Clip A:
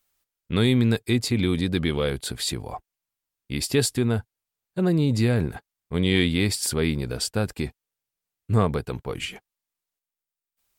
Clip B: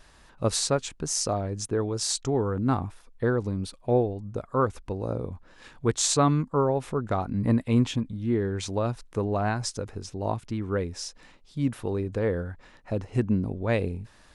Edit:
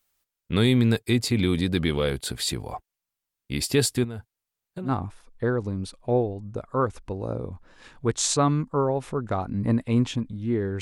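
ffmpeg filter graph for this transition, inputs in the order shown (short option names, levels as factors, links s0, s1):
-filter_complex "[0:a]asettb=1/sr,asplit=3[s0][s1][s2];[s0]atrim=end=4.044[s3];[s1]atrim=start=4.04:end=4.92,asetpts=PTS-STARTPTS,afade=t=in:d=0.004:c=qsin,afade=t=out:st=0.876:d=0.004:c=qsin,acompressor=threshold=0.0316:ratio=8:attack=3.2:release=140:knee=1:detection=peak[s4];[s2]atrim=start=4.916[s5];[s3][s4]acrossfade=d=0.004:c1=hsin:c2=qsin[s6];[s6][s5]acrossfade=d=0.004:c1=qsin:c2=hsin,apad=whole_dur=10.81,atrim=end=10.81,atrim=end=4.92,asetpts=PTS-STARTPTS[s7];[1:a]atrim=start=2.62:end=8.61,asetpts=PTS-STARTPTS[s8];[s7][s8]acrossfade=d=0.1:c1=tri:c2=tri"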